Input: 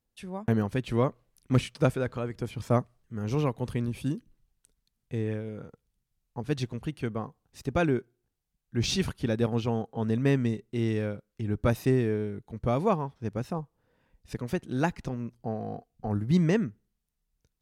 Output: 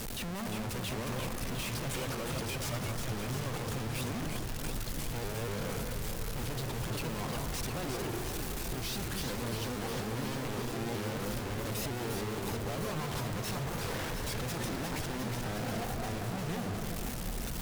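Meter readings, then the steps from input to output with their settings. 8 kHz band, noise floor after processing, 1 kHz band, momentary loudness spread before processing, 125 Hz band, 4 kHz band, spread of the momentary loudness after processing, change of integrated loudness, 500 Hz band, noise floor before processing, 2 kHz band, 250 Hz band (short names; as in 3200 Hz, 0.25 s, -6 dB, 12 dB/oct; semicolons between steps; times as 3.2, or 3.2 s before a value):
+6.5 dB, -38 dBFS, -3.0 dB, 12 LU, -6.5 dB, +2.0 dB, 2 LU, -6.0 dB, -7.5 dB, -82 dBFS, 0.0 dB, -8.0 dB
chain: infinite clipping; echo with dull and thin repeats by turns 0.177 s, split 1800 Hz, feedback 86%, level -4 dB; shaped vibrato saw up 4.2 Hz, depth 160 cents; gain -8 dB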